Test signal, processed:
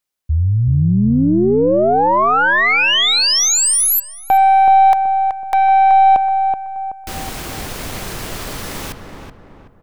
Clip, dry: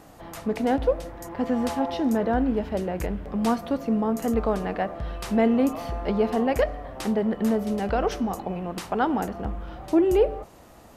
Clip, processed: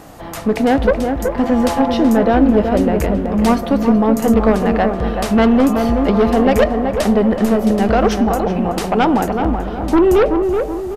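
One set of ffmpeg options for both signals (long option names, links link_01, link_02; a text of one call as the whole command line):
ffmpeg -i in.wav -filter_complex "[0:a]acontrast=49,aeval=exprs='0.562*(cos(1*acos(clip(val(0)/0.562,-1,1)))-cos(1*PI/2))+0.0708*(cos(2*acos(clip(val(0)/0.562,-1,1)))-cos(2*PI/2))+0.178*(cos(5*acos(clip(val(0)/0.562,-1,1)))-cos(5*PI/2))+0.01*(cos(6*acos(clip(val(0)/0.562,-1,1)))-cos(6*PI/2))+0.0708*(cos(7*acos(clip(val(0)/0.562,-1,1)))-cos(7*PI/2))':channel_layout=same,asplit=2[link_01][link_02];[link_02]adelay=377,lowpass=frequency=1500:poles=1,volume=-5dB,asplit=2[link_03][link_04];[link_04]adelay=377,lowpass=frequency=1500:poles=1,volume=0.45,asplit=2[link_05][link_06];[link_06]adelay=377,lowpass=frequency=1500:poles=1,volume=0.45,asplit=2[link_07][link_08];[link_08]adelay=377,lowpass=frequency=1500:poles=1,volume=0.45,asplit=2[link_09][link_10];[link_10]adelay=377,lowpass=frequency=1500:poles=1,volume=0.45,asplit=2[link_11][link_12];[link_12]adelay=377,lowpass=frequency=1500:poles=1,volume=0.45[link_13];[link_01][link_03][link_05][link_07][link_09][link_11][link_13]amix=inputs=7:normalize=0" out.wav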